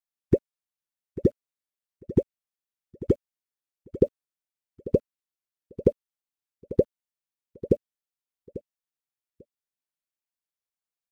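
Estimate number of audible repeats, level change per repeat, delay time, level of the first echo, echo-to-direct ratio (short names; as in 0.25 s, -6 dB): 2, -15.5 dB, 0.844 s, -16.0 dB, -16.0 dB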